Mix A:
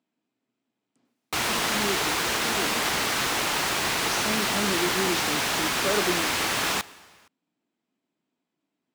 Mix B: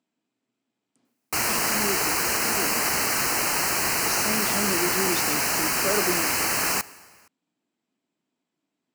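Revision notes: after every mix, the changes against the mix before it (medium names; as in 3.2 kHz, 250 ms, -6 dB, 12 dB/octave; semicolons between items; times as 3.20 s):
background: add Butterworth band-stop 3.5 kHz, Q 2.6; master: add treble shelf 8.4 kHz +11 dB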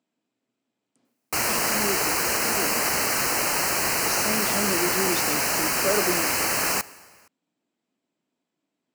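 master: add peaking EQ 550 Hz +4 dB 0.51 oct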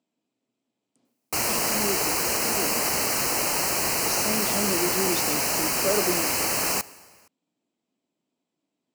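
master: add peaking EQ 1.6 kHz -6 dB 0.91 oct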